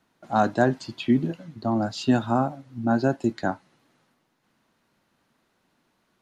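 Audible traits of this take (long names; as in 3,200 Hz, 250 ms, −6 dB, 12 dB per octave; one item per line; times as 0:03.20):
background noise floor −71 dBFS
spectral slope −6.0 dB per octave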